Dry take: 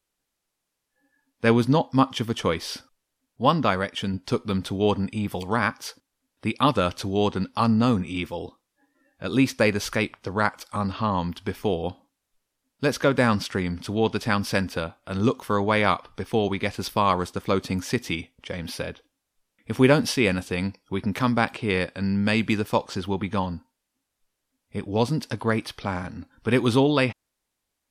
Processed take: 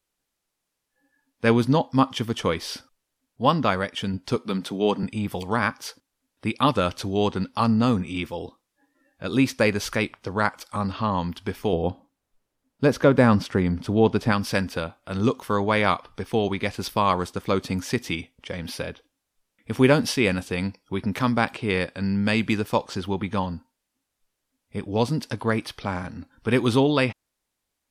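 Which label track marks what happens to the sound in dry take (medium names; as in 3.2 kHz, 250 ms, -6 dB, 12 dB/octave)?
4.360000	5.030000	high-pass 160 Hz 24 dB/octave
11.730000	14.320000	tilt shelf lows +5 dB, about 1.4 kHz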